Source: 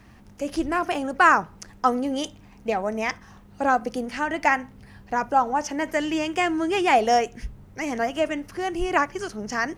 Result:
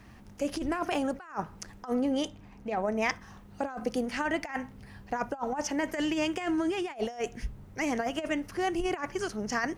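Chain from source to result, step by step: compressor with a negative ratio -25 dBFS, ratio -0.5; 1.93–3.02 s: treble shelf 3.6 kHz -7 dB; trim -4.5 dB

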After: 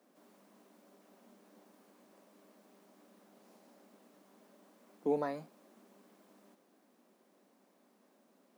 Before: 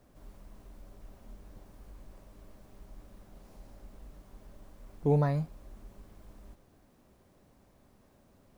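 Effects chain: steep high-pass 200 Hz 48 dB/octave; trim -3.5 dB

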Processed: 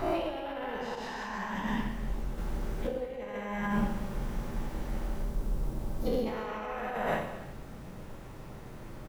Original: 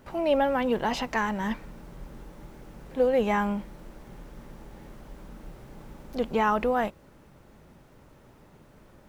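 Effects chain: every event in the spectrogram widened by 240 ms; 5.07–6.26 s: peaking EQ 2 kHz -8 dB 2.3 oct; loudspeakers at several distances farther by 52 m -1 dB, 82 m -8 dB; compressor with a negative ratio -26 dBFS, ratio -1; bass shelf 73 Hz +6.5 dB; gated-style reverb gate 420 ms falling, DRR 5 dB; 0.95–2.38 s: detune thickener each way 56 cents; trim -8.5 dB

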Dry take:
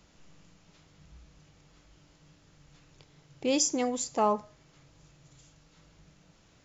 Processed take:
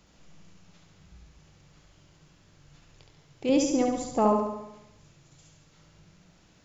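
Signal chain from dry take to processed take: 3.49–4.37 s: tilt EQ -3 dB/octave; on a send: flutter echo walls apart 12 m, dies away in 0.88 s

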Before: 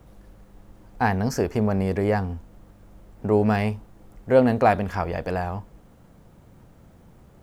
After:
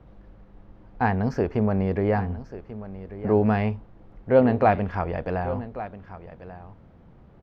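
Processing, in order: distance through air 270 m; delay 1139 ms -14.5 dB

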